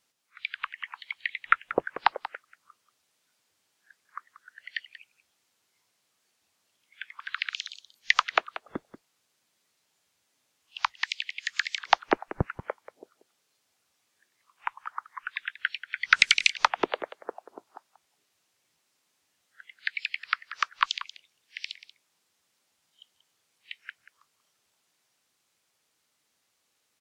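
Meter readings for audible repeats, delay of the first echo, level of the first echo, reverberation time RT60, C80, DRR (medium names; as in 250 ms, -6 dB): 1, 185 ms, -14.5 dB, no reverb, no reverb, no reverb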